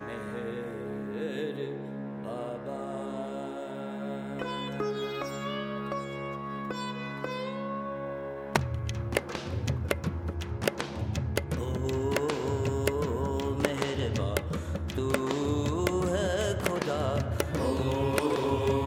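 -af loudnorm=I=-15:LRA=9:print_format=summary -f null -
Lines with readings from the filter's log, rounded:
Input Integrated:    -31.4 LUFS
Input True Peak:      -6.7 dBTP
Input LRA:             6.8 LU
Input Threshold:     -41.4 LUFS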